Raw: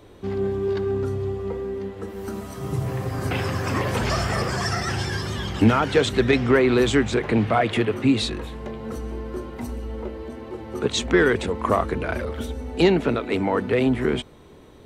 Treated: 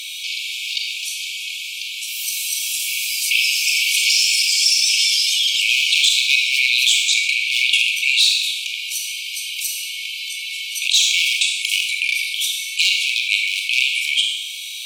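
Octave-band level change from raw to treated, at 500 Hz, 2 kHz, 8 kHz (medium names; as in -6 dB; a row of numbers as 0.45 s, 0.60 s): under -40 dB, +10.5 dB, +18.5 dB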